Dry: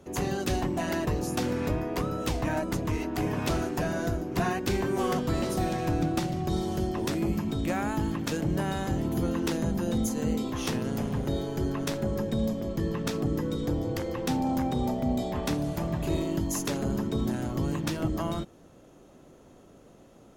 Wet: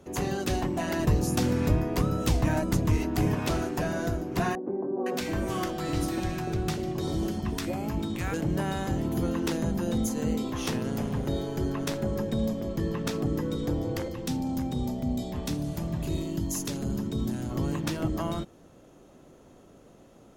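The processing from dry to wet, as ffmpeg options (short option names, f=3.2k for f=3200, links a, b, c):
-filter_complex "[0:a]asettb=1/sr,asplit=3[a][b][c];[a]atrim=end=0.994[d];[b]atrim=start=0.99:end=3.35,asetpts=PTS-STARTPTS,afade=t=in:d=0.004:c=qsin,afade=t=out:st=2.356:d=0.004:c=qsin,bass=f=250:g=7,treble=f=4k:g=4[e];[c]atrim=start=3.346[f];[d][e]acrossfade=d=0.004:c1=hsin:c2=qsin[g];[g][f]acrossfade=d=0.004:c1=qsin:c2=hsin,asettb=1/sr,asplit=3[h][i][j];[h]atrim=end=4.554[k];[i]atrim=start=4.55:end=8.34,asetpts=PTS-STARTPTS,afade=t=in:d=0.004:c=qsin,afade=t=out:st=3.786:d=0.004:c=qsin,acrossover=split=200|810[l][m][n];[n]adelay=510[o];[l]adelay=650[p];[p][m][o]amix=inputs=3:normalize=0,atrim=end_sample=167139[q];[j]atrim=start=8.336[r];[k][q]acrossfade=d=0.004:c1=hsin:c2=qsin[s];[s][r]acrossfade=d=0.004:c1=qsin:c2=hsin,asettb=1/sr,asplit=3[t][u][v];[t]atrim=end=14.084[w];[u]atrim=start=14.08:end=17.51,asetpts=PTS-STARTPTS,afade=t=in:d=0.004:c=qsin,afade=t=out:st=3.426:d=0.004:c=qsin,acrossover=split=310|3000[x][y][z];[y]acompressor=threshold=-43dB:ratio=2.5:attack=3.2:release=140:knee=2.83:detection=peak[aa];[x][aa][z]amix=inputs=3:normalize=0[ab];[v]atrim=start=17.506[ac];[w][ab]acrossfade=d=0.004:c1=hsin:c2=qsin[ad];[ad][ac]acrossfade=d=0.004:c1=qsin:c2=hsin"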